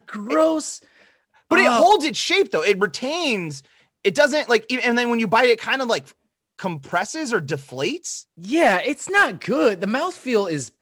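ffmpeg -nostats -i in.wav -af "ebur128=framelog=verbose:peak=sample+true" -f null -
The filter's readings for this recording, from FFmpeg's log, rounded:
Integrated loudness:
  I:         -19.9 LUFS
  Threshold: -30.5 LUFS
Loudness range:
  LRA:         4.4 LU
  Threshold: -40.6 LUFS
  LRA low:   -23.5 LUFS
  LRA high:  -19.0 LUFS
Sample peak:
  Peak:       -6.3 dBFS
True peak:
  Peak:       -6.1 dBFS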